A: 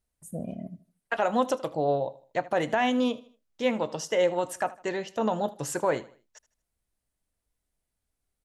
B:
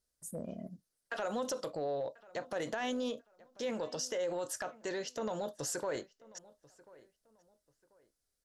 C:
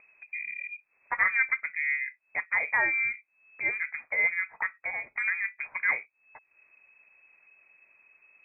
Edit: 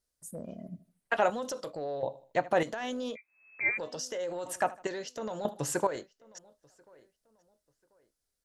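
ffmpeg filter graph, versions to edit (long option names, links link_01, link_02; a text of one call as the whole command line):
ffmpeg -i take0.wav -i take1.wav -i take2.wav -filter_complex "[0:a]asplit=4[link_01][link_02][link_03][link_04];[1:a]asplit=6[link_05][link_06][link_07][link_08][link_09][link_10];[link_05]atrim=end=0.682[link_11];[link_01]atrim=start=0.678:end=1.302[link_12];[link_06]atrim=start=1.298:end=2.032[link_13];[link_02]atrim=start=2.028:end=2.632[link_14];[link_07]atrim=start=2.628:end=3.17[link_15];[2:a]atrim=start=3.15:end=3.79[link_16];[link_08]atrim=start=3.77:end=4.462[link_17];[link_03]atrim=start=4.458:end=4.872[link_18];[link_09]atrim=start=4.868:end=5.452[link_19];[link_04]atrim=start=5.448:end=5.872[link_20];[link_10]atrim=start=5.868[link_21];[link_11][link_12]acrossfade=duration=0.004:curve1=hsin:curve2=hsin[link_22];[link_22][link_13]acrossfade=duration=0.004:curve1=hsin:curve2=hsin[link_23];[link_23][link_14]acrossfade=duration=0.004:curve1=hsin:curve2=hsin[link_24];[link_24][link_15]acrossfade=duration=0.004:curve1=hsin:curve2=hsin[link_25];[link_25][link_16]acrossfade=duration=0.02:curve1=tri:curve2=tri[link_26];[link_26][link_17]acrossfade=duration=0.02:curve1=tri:curve2=tri[link_27];[link_27][link_18]acrossfade=duration=0.004:curve1=hsin:curve2=hsin[link_28];[link_28][link_19]acrossfade=duration=0.004:curve1=hsin:curve2=hsin[link_29];[link_29][link_20]acrossfade=duration=0.004:curve1=hsin:curve2=hsin[link_30];[link_30][link_21]acrossfade=duration=0.004:curve1=hsin:curve2=hsin" out.wav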